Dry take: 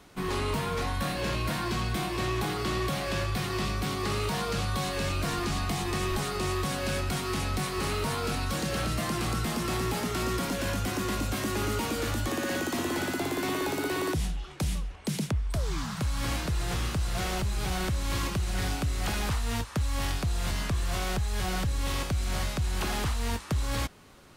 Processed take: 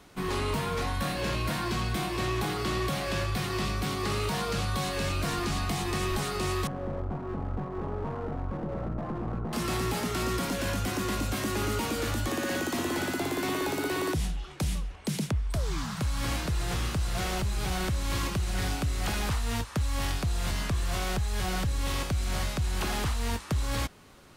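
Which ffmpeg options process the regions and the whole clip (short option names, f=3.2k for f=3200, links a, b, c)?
-filter_complex "[0:a]asettb=1/sr,asplit=3[a][b][c];[a]atrim=end=6.674[d];[b]atrim=start=6.67:end=9.53,asetpts=PTS-STARTPTS,afade=t=in:d=0.004:c=qsin,afade=t=out:st=2.856:d=0.004:c=qsin,lowpass=f=1k:w=0.5412,lowpass=f=1k:w=1.3066,aeval=exprs='clip(val(0),-1,0.0168)':c=same[e];[c]atrim=start=9.526[f];[d][e]acrossfade=d=0.004:c1=hsin:c2=qsin[g];[g][f]acrossfade=d=0.004:c1=qsin:c2=hsin"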